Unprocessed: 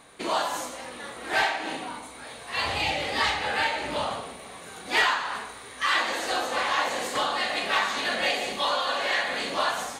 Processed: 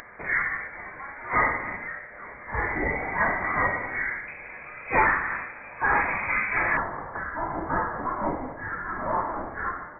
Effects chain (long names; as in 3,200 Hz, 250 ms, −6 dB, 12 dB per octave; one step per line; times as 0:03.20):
high-pass filter 680 Hz 24 dB per octave, from 0:04.28 270 Hz, from 0:06.77 1,400 Hz
upward compression, threshold −39 dBFS
voice inversion scrambler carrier 2,800 Hz
level +2.5 dB